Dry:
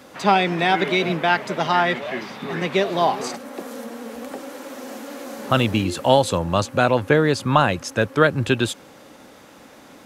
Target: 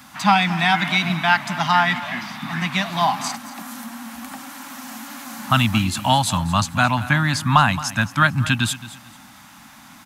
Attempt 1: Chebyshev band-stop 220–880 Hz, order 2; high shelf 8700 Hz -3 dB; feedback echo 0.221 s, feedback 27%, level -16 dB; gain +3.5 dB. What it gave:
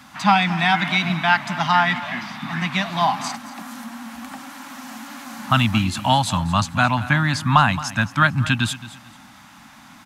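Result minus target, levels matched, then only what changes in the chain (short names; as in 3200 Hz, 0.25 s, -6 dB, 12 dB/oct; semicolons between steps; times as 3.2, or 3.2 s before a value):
8000 Hz band -3.5 dB
change: high shelf 8700 Hz +7 dB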